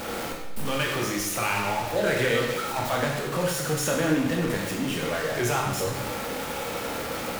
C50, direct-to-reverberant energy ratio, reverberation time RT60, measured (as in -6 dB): 3.0 dB, -1.0 dB, 1.0 s